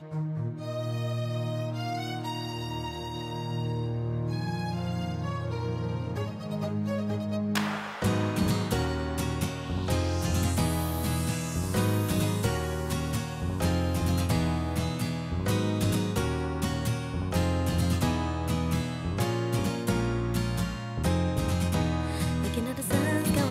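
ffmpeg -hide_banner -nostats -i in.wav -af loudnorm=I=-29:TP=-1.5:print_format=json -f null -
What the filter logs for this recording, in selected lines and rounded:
"input_i" : "-29.4",
"input_tp" : "-12.3",
"input_lra" : "4.5",
"input_thresh" : "-39.4",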